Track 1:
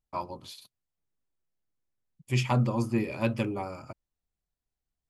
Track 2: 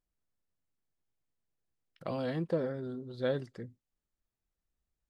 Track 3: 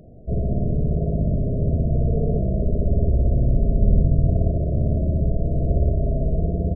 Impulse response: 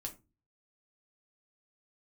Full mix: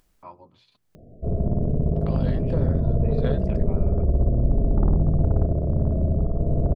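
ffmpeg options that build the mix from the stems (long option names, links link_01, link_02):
-filter_complex "[0:a]lowpass=2300,adelay=100,volume=-11dB[link_01];[1:a]volume=-3.5dB,asplit=2[link_02][link_03];[2:a]adelay=950,volume=-4dB[link_04];[link_03]apad=whole_len=229114[link_05];[link_01][link_05]sidechaincompress=threshold=-52dB:ratio=8:attack=16:release=111[link_06];[link_06][link_02][link_04]amix=inputs=3:normalize=0,bandreject=frequency=60:width_type=h:width=6,bandreject=frequency=120:width_type=h:width=6,bandreject=frequency=180:width_type=h:width=6,aeval=exprs='0.316*(cos(1*acos(clip(val(0)/0.316,-1,1)))-cos(1*PI/2))+0.0282*(cos(4*acos(clip(val(0)/0.316,-1,1)))-cos(4*PI/2))+0.0891*(cos(5*acos(clip(val(0)/0.316,-1,1)))-cos(5*PI/2))+0.0501*(cos(7*acos(clip(val(0)/0.316,-1,1)))-cos(7*PI/2))':channel_layout=same,acompressor=mode=upward:threshold=-47dB:ratio=2.5"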